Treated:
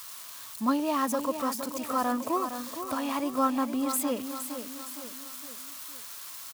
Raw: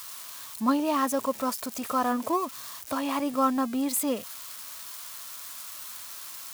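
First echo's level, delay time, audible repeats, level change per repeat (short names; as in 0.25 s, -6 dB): -9.0 dB, 0.463 s, 4, -6.5 dB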